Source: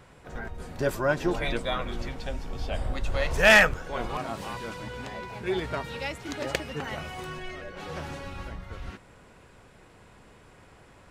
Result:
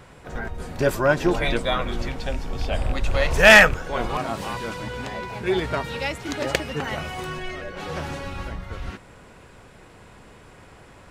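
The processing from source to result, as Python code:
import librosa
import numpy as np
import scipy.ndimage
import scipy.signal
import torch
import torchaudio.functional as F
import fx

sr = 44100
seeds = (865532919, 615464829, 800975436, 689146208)

y = fx.rattle_buzz(x, sr, strikes_db=-28.0, level_db=-31.0)
y = F.gain(torch.from_numpy(y), 6.0).numpy()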